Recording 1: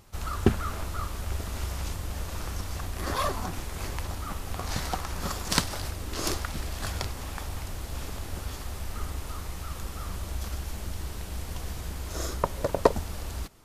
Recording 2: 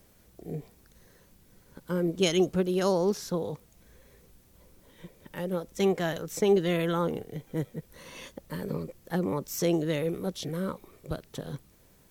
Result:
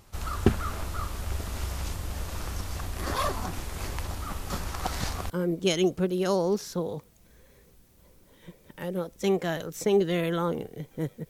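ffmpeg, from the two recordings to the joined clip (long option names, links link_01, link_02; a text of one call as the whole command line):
ffmpeg -i cue0.wav -i cue1.wav -filter_complex "[0:a]apad=whole_dur=11.29,atrim=end=11.29,asplit=2[link_01][link_02];[link_01]atrim=end=4.502[link_03];[link_02]atrim=start=4.498:end=5.302,asetpts=PTS-STARTPTS,areverse[link_04];[1:a]atrim=start=1.858:end=7.85[link_05];[link_03][link_04]acrossfade=duration=0.004:curve1=hsin:curve2=hsin[link_06];[link_06][link_05]acrossfade=duration=0.004:curve1=hsin:curve2=hsin" out.wav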